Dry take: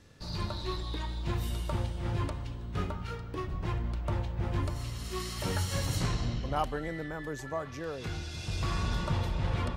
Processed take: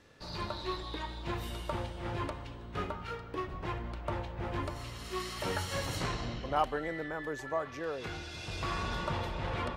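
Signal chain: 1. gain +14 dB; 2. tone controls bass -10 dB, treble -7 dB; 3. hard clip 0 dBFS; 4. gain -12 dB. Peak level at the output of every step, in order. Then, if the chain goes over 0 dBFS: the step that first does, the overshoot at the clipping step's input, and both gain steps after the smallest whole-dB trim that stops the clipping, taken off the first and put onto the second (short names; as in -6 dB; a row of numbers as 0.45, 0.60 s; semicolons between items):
-3.5, -4.5, -4.5, -16.5 dBFS; no overload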